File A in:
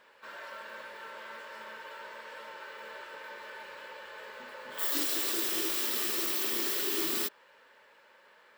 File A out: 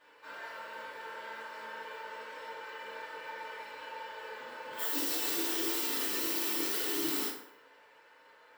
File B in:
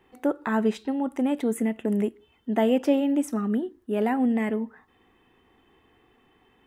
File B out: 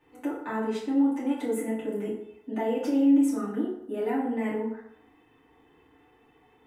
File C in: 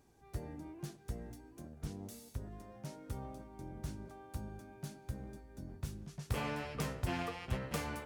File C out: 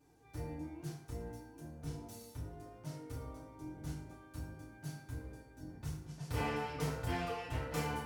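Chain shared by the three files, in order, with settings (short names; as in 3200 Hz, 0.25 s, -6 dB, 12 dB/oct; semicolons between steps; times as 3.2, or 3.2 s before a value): notches 50/100 Hz; limiter -22 dBFS; FDN reverb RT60 0.77 s, low-frequency decay 0.75×, high-frequency decay 0.6×, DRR -8.5 dB; gain -8.5 dB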